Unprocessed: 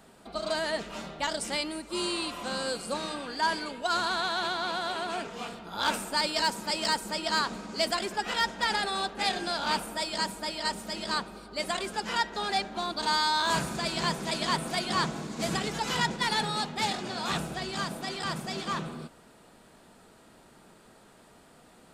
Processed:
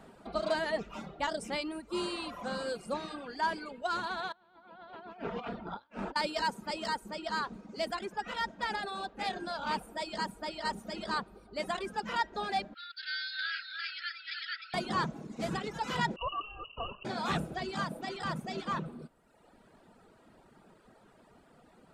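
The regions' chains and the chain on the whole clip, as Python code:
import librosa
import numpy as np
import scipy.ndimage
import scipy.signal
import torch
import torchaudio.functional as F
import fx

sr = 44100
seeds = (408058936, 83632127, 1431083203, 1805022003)

y = fx.chain(x, sr, fx.median_filter(points=3),
    fx.air_absorb(metres=210.0),
    fx.over_compress(threshold_db=-40.0, ratio=-0.5), at=(4.32, 6.16))
y = fx.chain(y, sr, fx.brickwall_bandpass(low_hz=1300.0, high_hz=5400.0),
    fx.echo_single(ms=306, db=-5.0), at=(12.74, 14.74))
y = fx.chain(y, sr, fx.lower_of_two(delay_ms=1.7),
    fx.cheby1_bandstop(low_hz=310.0, high_hz=1700.0, order=4),
    fx.freq_invert(carrier_hz=2900), at=(16.16, 17.05))
y = fx.dereverb_blind(y, sr, rt60_s=1.1)
y = fx.high_shelf(y, sr, hz=3100.0, db=-12.0)
y = fx.rider(y, sr, range_db=10, speed_s=2.0)
y = y * 10.0 ** (-1.5 / 20.0)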